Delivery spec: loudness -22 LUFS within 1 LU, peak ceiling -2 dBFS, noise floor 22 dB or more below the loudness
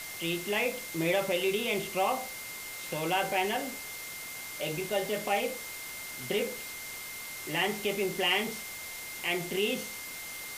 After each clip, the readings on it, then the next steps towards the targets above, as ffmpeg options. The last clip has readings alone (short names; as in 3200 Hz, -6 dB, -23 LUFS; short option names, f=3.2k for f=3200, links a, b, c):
steady tone 2100 Hz; tone level -43 dBFS; noise floor -42 dBFS; noise floor target -54 dBFS; loudness -32.0 LUFS; peak -13.0 dBFS; loudness target -22.0 LUFS
-> -af "bandreject=f=2.1k:w=30"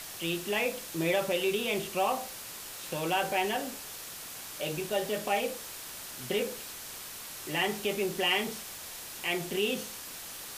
steady tone none; noise floor -43 dBFS; noise floor target -55 dBFS
-> -af "afftdn=nr=12:nf=-43"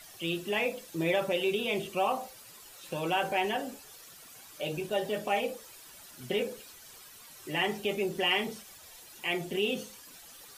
noise floor -52 dBFS; noise floor target -54 dBFS
-> -af "afftdn=nr=6:nf=-52"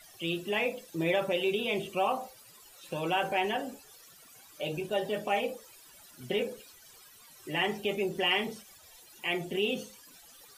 noise floor -56 dBFS; loudness -31.5 LUFS; peak -14.0 dBFS; loudness target -22.0 LUFS
-> -af "volume=9.5dB"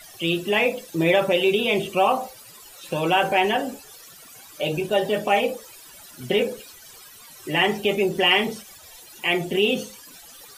loudness -22.0 LUFS; peak -4.5 dBFS; noise floor -46 dBFS